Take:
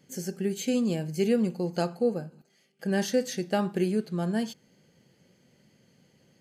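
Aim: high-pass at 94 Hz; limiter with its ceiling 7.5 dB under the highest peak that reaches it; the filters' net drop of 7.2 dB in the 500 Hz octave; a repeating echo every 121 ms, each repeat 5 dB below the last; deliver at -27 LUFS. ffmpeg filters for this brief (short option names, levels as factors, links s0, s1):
-af "highpass=94,equalizer=f=500:t=o:g=-9,alimiter=level_in=1.06:limit=0.0631:level=0:latency=1,volume=0.944,aecho=1:1:121|242|363|484|605|726|847:0.562|0.315|0.176|0.0988|0.0553|0.031|0.0173,volume=1.88"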